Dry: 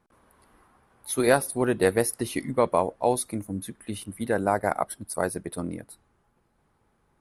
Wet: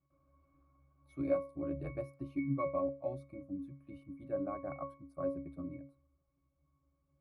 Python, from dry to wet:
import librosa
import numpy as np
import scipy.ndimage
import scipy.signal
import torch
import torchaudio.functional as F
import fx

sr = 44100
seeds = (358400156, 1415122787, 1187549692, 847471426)

y = fx.ring_mod(x, sr, carrier_hz=37.0, at=(1.18, 1.95), fade=0.02)
y = fx.octave_resonator(y, sr, note='C#', decay_s=0.33)
y = F.gain(torch.from_numpy(y), 4.0).numpy()